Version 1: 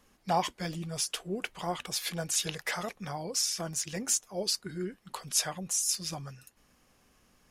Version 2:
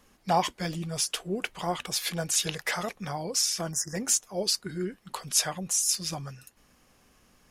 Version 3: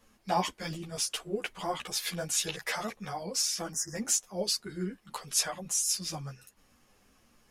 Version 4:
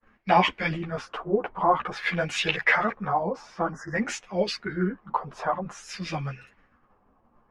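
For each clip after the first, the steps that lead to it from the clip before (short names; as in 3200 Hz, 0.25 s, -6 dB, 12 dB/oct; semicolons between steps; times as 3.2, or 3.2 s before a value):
spectral delete 3.72–3.95, 2000–4900 Hz; gain +3.5 dB
ensemble effect
expander -57 dBFS; LFO low-pass sine 0.52 Hz 930–2500 Hz; gain +8 dB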